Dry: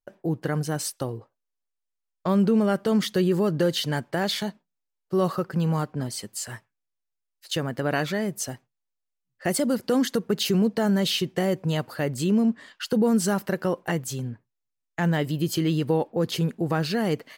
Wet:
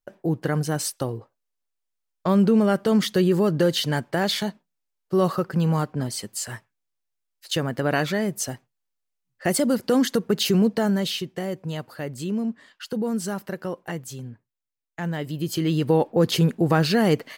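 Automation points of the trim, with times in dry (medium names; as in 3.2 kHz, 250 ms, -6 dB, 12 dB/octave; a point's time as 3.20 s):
10.72 s +2.5 dB
11.30 s -5 dB
15.16 s -5 dB
16.10 s +5.5 dB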